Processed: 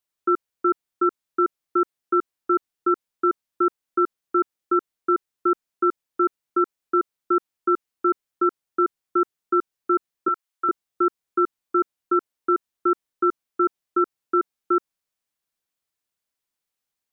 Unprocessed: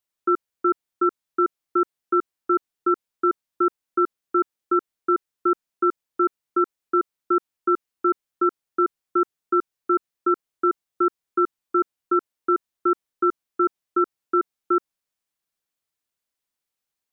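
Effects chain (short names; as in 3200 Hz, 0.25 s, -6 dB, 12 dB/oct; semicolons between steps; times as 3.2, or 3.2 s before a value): 10.28–10.69 HPF 800 Hz 12 dB/oct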